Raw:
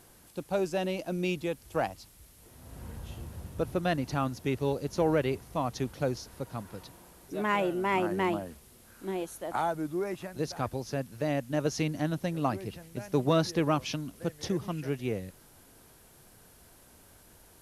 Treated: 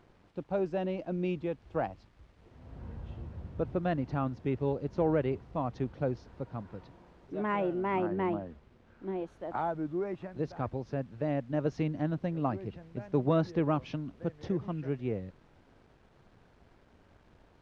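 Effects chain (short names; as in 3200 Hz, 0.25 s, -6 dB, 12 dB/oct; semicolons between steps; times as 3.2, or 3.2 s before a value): bit-crush 9-bit; tape spacing loss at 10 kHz 37 dB, from 8.06 s at 10 kHz 43 dB, from 9.26 s at 10 kHz 36 dB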